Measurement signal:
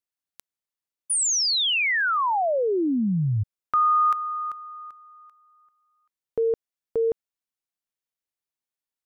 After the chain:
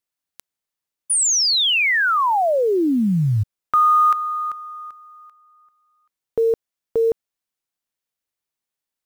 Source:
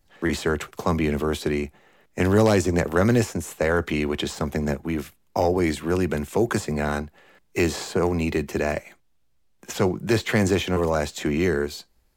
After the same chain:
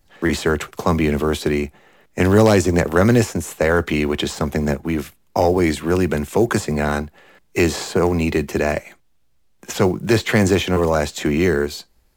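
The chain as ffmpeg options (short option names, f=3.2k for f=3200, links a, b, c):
-af "acrusher=bits=9:mode=log:mix=0:aa=0.000001,volume=5dB"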